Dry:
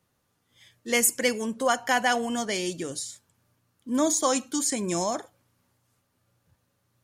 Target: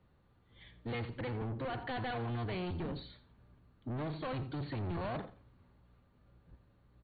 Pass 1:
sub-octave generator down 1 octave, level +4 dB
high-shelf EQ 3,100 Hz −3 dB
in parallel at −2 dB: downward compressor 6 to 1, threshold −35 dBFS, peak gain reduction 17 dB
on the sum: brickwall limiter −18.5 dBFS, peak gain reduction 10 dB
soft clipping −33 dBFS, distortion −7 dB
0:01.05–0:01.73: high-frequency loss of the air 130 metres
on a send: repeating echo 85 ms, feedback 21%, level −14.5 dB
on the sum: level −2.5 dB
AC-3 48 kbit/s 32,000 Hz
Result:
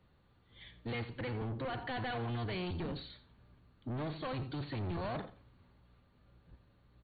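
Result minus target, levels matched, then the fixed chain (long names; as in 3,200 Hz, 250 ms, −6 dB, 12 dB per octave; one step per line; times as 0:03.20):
4,000 Hz band +3.0 dB
sub-octave generator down 1 octave, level +4 dB
high-shelf EQ 3,100 Hz −12.5 dB
in parallel at −2 dB: downward compressor 6 to 1, threshold −35 dBFS, peak gain reduction 17 dB
on the sum: brickwall limiter −18.5 dBFS, peak gain reduction 8 dB
soft clipping −33 dBFS, distortion −7 dB
0:01.05–0:01.73: high-frequency loss of the air 130 metres
on a send: repeating echo 85 ms, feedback 21%, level −14.5 dB
on the sum: level −2.5 dB
AC-3 48 kbit/s 32,000 Hz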